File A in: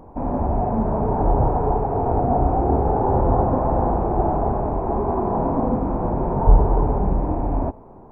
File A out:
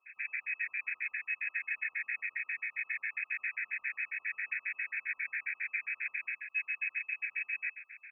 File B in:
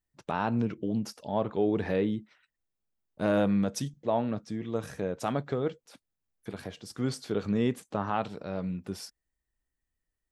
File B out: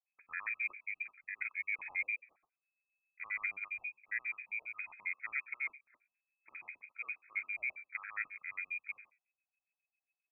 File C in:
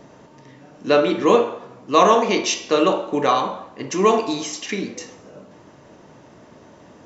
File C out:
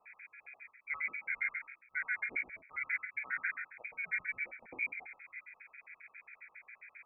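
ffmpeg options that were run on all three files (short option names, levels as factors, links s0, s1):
-filter_complex "[0:a]bandreject=f=50:t=h:w=6,bandreject=f=100:t=h:w=6,bandreject=f=150:t=h:w=6,bandreject=f=200:t=h:w=6,bandreject=f=250:t=h:w=6,bandreject=f=300:t=h:w=6,adynamicequalizer=threshold=0.00447:dfrequency=140:dqfactor=7.9:tfrequency=140:tqfactor=7.9:attack=5:release=100:ratio=0.375:range=4:mode=cutabove:tftype=bell,areverse,acompressor=threshold=0.0447:ratio=10,areverse,flanger=delay=5.7:depth=8.8:regen=89:speed=0.87:shape=triangular,asplit=2[s0][s1];[s1]adynamicsmooth=sensitivity=1.5:basefreq=1900,volume=1.26[s2];[s0][s2]amix=inputs=2:normalize=0,lowpass=f=2200:t=q:w=0.5098,lowpass=f=2200:t=q:w=0.6013,lowpass=f=2200:t=q:w=0.9,lowpass=f=2200:t=q:w=2.563,afreqshift=-2600,afftfilt=real='re*gt(sin(2*PI*7.4*pts/sr)*(1-2*mod(floor(b*sr/1024/1300),2)),0)':imag='im*gt(sin(2*PI*7.4*pts/sr)*(1-2*mod(floor(b*sr/1024/1300),2)),0)':win_size=1024:overlap=0.75,volume=0.473"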